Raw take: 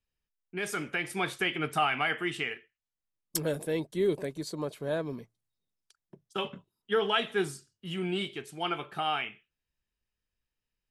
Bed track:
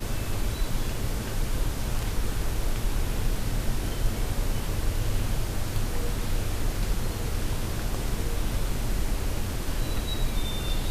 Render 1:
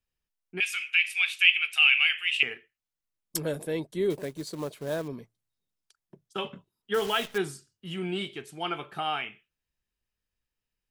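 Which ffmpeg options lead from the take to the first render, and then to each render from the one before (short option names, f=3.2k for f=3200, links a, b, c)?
-filter_complex "[0:a]asettb=1/sr,asplit=3[a][b][c];[a]atrim=end=0.604[d];[b]atrim=start=0.6:end=2.43,asetpts=PTS-STARTPTS,afade=t=in:d=0.004:c=qsin,afade=t=out:st=1.826:d=0.004:c=qsin,highpass=f=2.6k:t=q:w=9.8[e];[c]atrim=start=2.426[f];[d][e]acrossfade=d=0.004:c1=hsin:c2=qsin[g];[g][f]acrossfade=d=0.004:c1=qsin:c2=hsin,asettb=1/sr,asplit=3[h][i][j];[h]atrim=end=4.104[k];[i]atrim=start=4.1:end=5.08,asetpts=PTS-STARTPTS,afade=t=in:d=0.004:c=qsin,afade=t=out:st=0.976:d=0.004:c=qsin,acrusher=bits=4:mode=log:mix=0:aa=0.000001[l];[j]atrim=start=5.076[m];[k][l]acrossfade=d=0.004:c1=hsin:c2=qsin[n];[n][m]acrossfade=d=0.004:c1=qsin:c2=hsin,asettb=1/sr,asplit=3[o][p][q];[o]atrim=end=6.944[r];[p]atrim=start=6.94:end=7.38,asetpts=PTS-STARTPTS,afade=t=in:d=0.004:c=qsin,afade=t=out:st=0.436:d=0.004:c=qsin,acrusher=bits=7:dc=4:mix=0:aa=0.000001[s];[q]atrim=start=7.376[t];[r][s]acrossfade=d=0.004:c1=hsin:c2=qsin[u];[u][t]acrossfade=d=0.004:c1=qsin:c2=hsin"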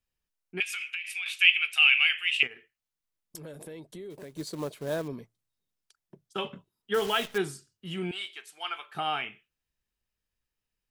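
-filter_complex "[0:a]asettb=1/sr,asplit=3[a][b][c];[a]atrim=end=0.624[d];[b]atrim=start=0.62:end=1.26,asetpts=PTS-STARTPTS,afade=t=in:d=0.004:c=qsin,afade=t=out:st=0.636:d=0.004:c=qsin,acompressor=threshold=-30dB:ratio=12:attack=3.2:release=140:knee=1:detection=peak[e];[c]atrim=start=1.256[f];[d][e]acrossfade=d=0.004:c1=hsin:c2=qsin[g];[g][f]acrossfade=d=0.004:c1=qsin:c2=hsin,asplit=3[h][i][j];[h]afade=t=out:st=2.46:d=0.02[k];[i]acompressor=threshold=-40dB:ratio=6:attack=3.2:release=140:knee=1:detection=peak,afade=t=in:st=2.46:d=0.02,afade=t=out:st=4.33:d=0.02[l];[j]afade=t=in:st=4.33:d=0.02[m];[k][l][m]amix=inputs=3:normalize=0,asettb=1/sr,asplit=3[n][o][p];[n]atrim=end=8.114[q];[o]atrim=start=8.11:end=8.95,asetpts=PTS-STARTPTS,afade=t=in:d=0.004:c=qsin,afade=t=out:st=0.836:d=0.004:c=qsin,highpass=1.1k[r];[p]atrim=start=8.946[s];[q][r]acrossfade=d=0.004:c1=hsin:c2=qsin[t];[t][s]acrossfade=d=0.004:c1=qsin:c2=hsin"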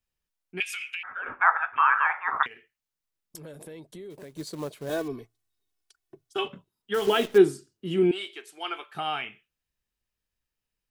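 -filter_complex "[0:a]asettb=1/sr,asplit=3[a][b][c];[a]atrim=end=1.034[d];[b]atrim=start=1.03:end=2.46,asetpts=PTS-STARTPTS,afade=t=in:d=0.004:c=qsin,afade=t=out:st=1.426:d=0.004:c=qsin,lowpass=f=3.3k:t=q:w=0.5098,lowpass=f=3.3k:t=q:w=0.6013,lowpass=f=3.3k:t=q:w=0.9,lowpass=f=3.3k:t=q:w=2.563,afreqshift=-3900[e];[c]atrim=start=2.456[f];[d][e]acrossfade=d=0.004:c1=hsin:c2=qsin[g];[g][f]acrossfade=d=0.004:c1=qsin:c2=hsin,asettb=1/sr,asplit=3[h][i][j];[h]atrim=end=4.894[k];[i]atrim=start=4.89:end=6.48,asetpts=PTS-STARTPTS,afade=t=in:d=0.004:c=qsin,afade=t=out:st=1.586:d=0.004:c=qsin,aecho=1:1:2.7:0.98,atrim=end_sample=70119[l];[j]atrim=start=6.476[m];[k][l]acrossfade=d=0.004:c1=hsin:c2=qsin[n];[n][m]acrossfade=d=0.004:c1=qsin:c2=hsin,asettb=1/sr,asplit=3[o][p][q];[o]atrim=end=7.074[r];[p]atrim=start=7.07:end=8.84,asetpts=PTS-STARTPTS,afade=t=in:d=0.004:c=qsin,afade=t=out:st=1.766:d=0.004:c=qsin,equalizer=f=340:t=o:w=1.3:g=15[s];[q]atrim=start=8.836[t];[r][s]acrossfade=d=0.004:c1=hsin:c2=qsin[u];[u][t]acrossfade=d=0.004:c1=qsin:c2=hsin"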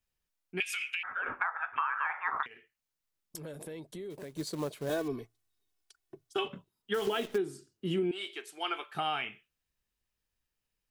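-af "alimiter=limit=-14.5dB:level=0:latency=1:release=423,acompressor=threshold=-28dB:ratio=6"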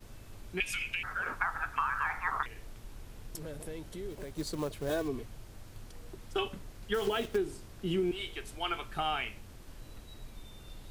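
-filter_complex "[1:a]volume=-20.5dB[a];[0:a][a]amix=inputs=2:normalize=0"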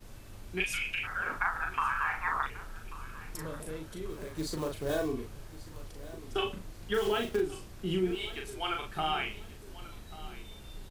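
-filter_complex "[0:a]asplit=2[a][b];[b]adelay=38,volume=-4dB[c];[a][c]amix=inputs=2:normalize=0,aecho=1:1:1138|2276|3414:0.133|0.0493|0.0183"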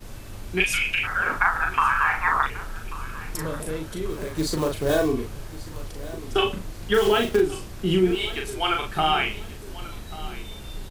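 -af "volume=10dB"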